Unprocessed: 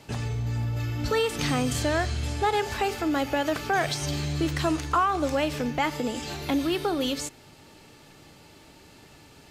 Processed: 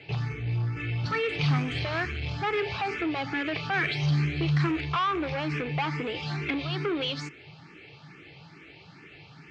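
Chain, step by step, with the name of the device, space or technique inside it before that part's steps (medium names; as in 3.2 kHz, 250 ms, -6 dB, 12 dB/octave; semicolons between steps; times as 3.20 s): barber-pole phaser into a guitar amplifier (barber-pole phaser +2.3 Hz; saturation -27.5 dBFS, distortion -11 dB; cabinet simulation 110–4200 Hz, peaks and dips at 150 Hz +8 dB, 240 Hz -9 dB, 580 Hz -9 dB, 930 Hz -5 dB, 2.3 kHz +8 dB, 3.7 kHz -3 dB); trim +5.5 dB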